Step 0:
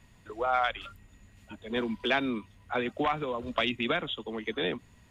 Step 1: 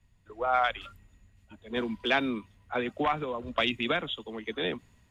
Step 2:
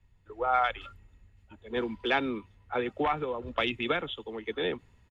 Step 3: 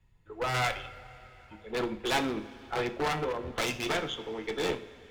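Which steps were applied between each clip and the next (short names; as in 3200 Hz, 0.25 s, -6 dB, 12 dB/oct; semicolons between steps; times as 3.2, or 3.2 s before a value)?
three-band expander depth 40%
LPF 3100 Hz 6 dB/oct; comb 2.3 ms, depth 34%
one-sided fold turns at -26.5 dBFS; two-slope reverb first 0.41 s, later 4.5 s, from -20 dB, DRR 5.5 dB; added harmonics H 6 -17 dB, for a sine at -11.5 dBFS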